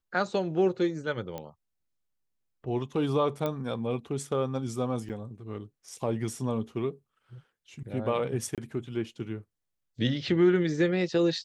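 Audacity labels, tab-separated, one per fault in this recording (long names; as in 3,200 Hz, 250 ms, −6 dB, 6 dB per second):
1.380000	1.380000	click −22 dBFS
3.460000	3.460000	click −18 dBFS
5.090000	5.100000	drop-out 8.1 ms
8.550000	8.580000	drop-out 27 ms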